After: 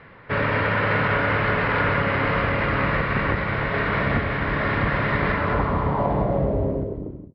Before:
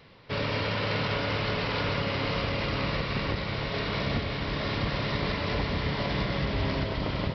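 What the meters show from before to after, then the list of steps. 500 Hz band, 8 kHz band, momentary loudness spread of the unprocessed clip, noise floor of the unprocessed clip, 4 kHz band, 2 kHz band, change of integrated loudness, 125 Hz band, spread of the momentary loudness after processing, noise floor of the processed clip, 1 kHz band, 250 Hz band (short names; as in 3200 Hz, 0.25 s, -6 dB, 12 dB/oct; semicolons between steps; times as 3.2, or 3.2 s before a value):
+7.5 dB, n/a, 2 LU, -33 dBFS, -4.5 dB, +9.5 dB, +7.0 dB, +5.5 dB, 3 LU, -41 dBFS, +9.5 dB, +6.0 dB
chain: ending faded out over 0.91 s; low-pass sweep 1700 Hz -> 320 Hz, 5.29–7.25; gain +6 dB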